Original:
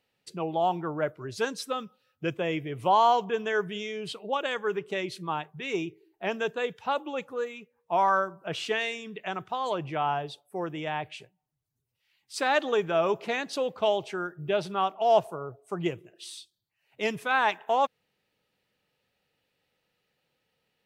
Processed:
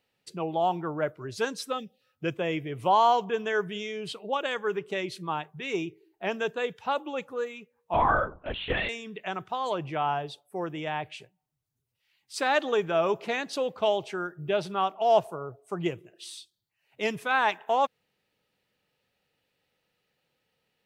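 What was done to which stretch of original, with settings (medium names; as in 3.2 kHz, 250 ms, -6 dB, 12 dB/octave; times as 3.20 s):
1.78–2.02 s: time-frequency box 780–1700 Hz -27 dB
7.94–8.89 s: LPC vocoder at 8 kHz whisper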